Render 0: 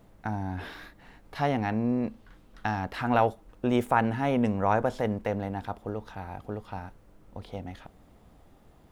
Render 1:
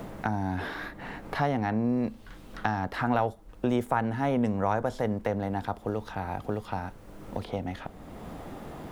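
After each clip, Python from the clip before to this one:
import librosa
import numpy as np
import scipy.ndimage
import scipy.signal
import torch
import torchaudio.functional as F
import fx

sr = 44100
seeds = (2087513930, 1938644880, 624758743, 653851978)

y = fx.dynamic_eq(x, sr, hz=2600.0, q=3.1, threshold_db=-54.0, ratio=4.0, max_db=-5)
y = fx.band_squash(y, sr, depth_pct=70)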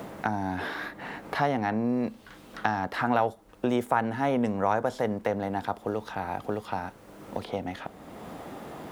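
y = fx.highpass(x, sr, hz=230.0, slope=6)
y = y * 10.0 ** (2.5 / 20.0)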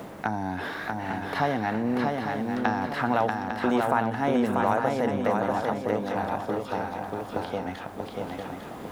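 y = fx.echo_swing(x, sr, ms=851, ratio=3, feedback_pct=39, wet_db=-3.5)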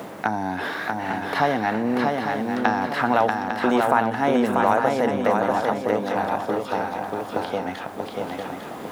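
y = fx.highpass(x, sr, hz=210.0, slope=6)
y = y * 10.0 ** (5.5 / 20.0)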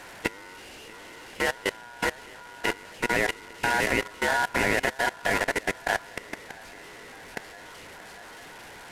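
y = fx.delta_mod(x, sr, bps=64000, step_db=-19.5)
y = fx.level_steps(y, sr, step_db=21)
y = y * np.sin(2.0 * np.pi * 1200.0 * np.arange(len(y)) / sr)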